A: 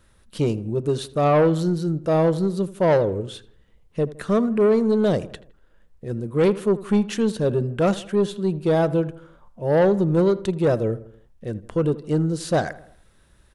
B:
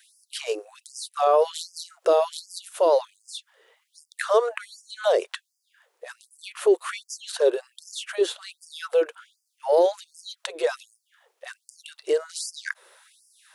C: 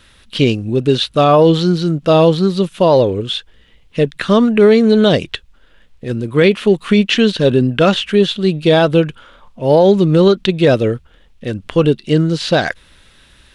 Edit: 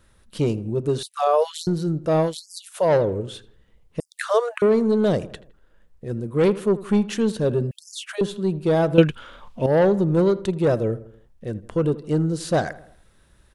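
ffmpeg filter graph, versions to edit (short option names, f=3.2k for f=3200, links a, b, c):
-filter_complex "[1:a]asplit=4[a][b][c][d];[0:a]asplit=6[e][f][g][h][i][j];[e]atrim=end=1.032[k];[a]atrim=start=1.028:end=1.672[l];[f]atrim=start=1.668:end=2.35[m];[b]atrim=start=2.19:end=2.95[n];[g]atrim=start=2.79:end=4.002[o];[c]atrim=start=3.998:end=4.622[p];[h]atrim=start=4.618:end=7.712[q];[d]atrim=start=7.708:end=8.212[r];[i]atrim=start=8.208:end=8.982[s];[2:a]atrim=start=8.978:end=9.662[t];[j]atrim=start=9.658[u];[k][l]acrossfade=d=0.004:c1=hsin:c2=hsin[v];[v][m]acrossfade=d=0.004:c1=hsin:c2=hsin[w];[w][n]acrossfade=d=0.16:c1=tri:c2=tri[x];[x][o]acrossfade=d=0.16:c1=tri:c2=tri[y];[y][p]acrossfade=d=0.004:c1=hsin:c2=hsin[z];[z][q]acrossfade=d=0.004:c1=hsin:c2=hsin[aa];[aa][r]acrossfade=d=0.004:c1=hsin:c2=hsin[ab];[ab][s]acrossfade=d=0.004:c1=hsin:c2=hsin[ac];[ac][t]acrossfade=d=0.004:c1=hsin:c2=hsin[ad];[ad][u]acrossfade=d=0.004:c1=hsin:c2=hsin"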